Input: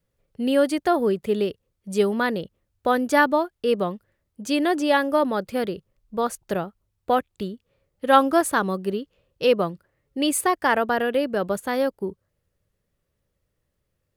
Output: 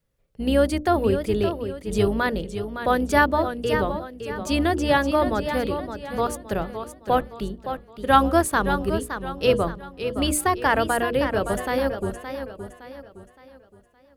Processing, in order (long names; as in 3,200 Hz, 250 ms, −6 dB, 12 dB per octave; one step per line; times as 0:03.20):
sub-octave generator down 2 octaves, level −3 dB
mains-hum notches 60/120/180/240/300/360/420/480/540/600 Hz
feedback echo with a swinging delay time 566 ms, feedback 39%, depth 98 cents, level −9 dB